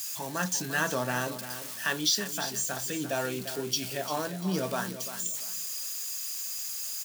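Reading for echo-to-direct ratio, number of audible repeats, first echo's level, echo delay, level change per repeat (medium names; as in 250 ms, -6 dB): -11.0 dB, 2, -11.5 dB, 346 ms, -12.0 dB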